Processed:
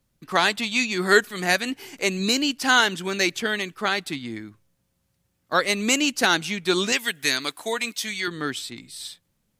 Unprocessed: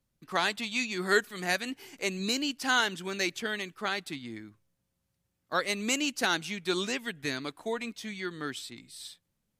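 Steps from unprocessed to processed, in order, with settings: 6.92–8.28 tilt +3 dB/oct; gain +8 dB

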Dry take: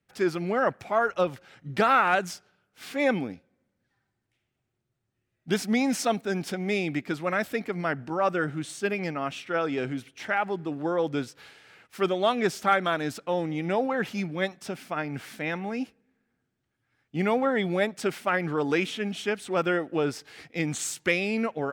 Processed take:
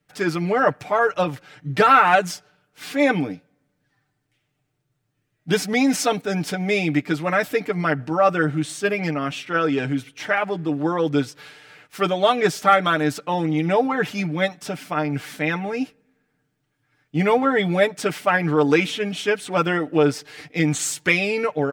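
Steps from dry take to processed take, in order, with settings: comb 6.7 ms, depth 72%; gain +5 dB

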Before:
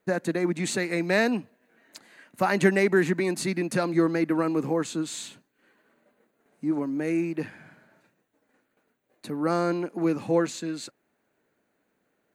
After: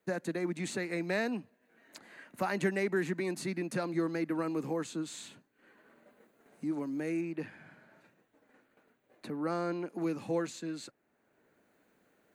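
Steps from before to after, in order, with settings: 7.21–9.88 tone controls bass -1 dB, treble -6 dB; three-band squash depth 40%; gain -8.5 dB

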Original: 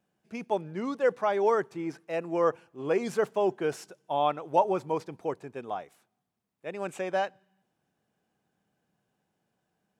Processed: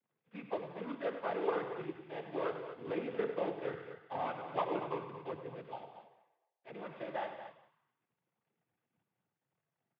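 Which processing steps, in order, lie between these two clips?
CVSD 16 kbps; resonator 140 Hz, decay 1 s, harmonics odd, mix 80%; 5.63–6.68 envelope flanger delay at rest 4.8 ms, full sweep at -47.5 dBFS; echo 0.178 s -16.5 dB; noise vocoder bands 16; on a send: loudspeakers at several distances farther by 34 m -11 dB, 80 m -11 dB; on the sum: gain +3.5 dB

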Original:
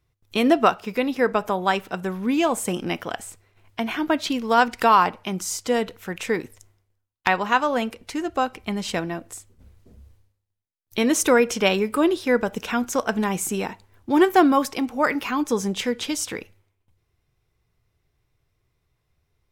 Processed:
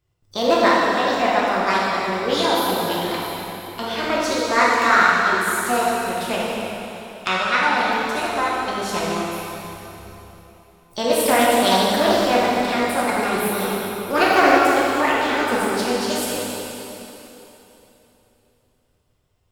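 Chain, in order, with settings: formant shift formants +6 st; plate-style reverb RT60 3.4 s, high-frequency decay 0.9×, DRR -6.5 dB; Doppler distortion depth 0.13 ms; gain -4 dB

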